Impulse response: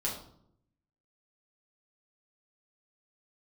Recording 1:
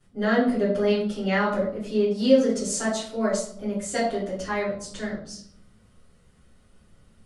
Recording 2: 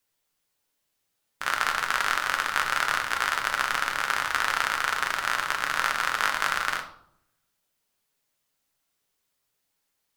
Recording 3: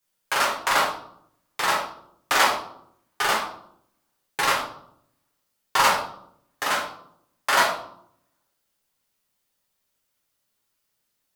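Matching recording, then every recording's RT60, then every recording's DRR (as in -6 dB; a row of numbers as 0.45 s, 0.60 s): 3; 0.70 s, 0.70 s, 0.70 s; -13.5 dB, 3.0 dB, -5.0 dB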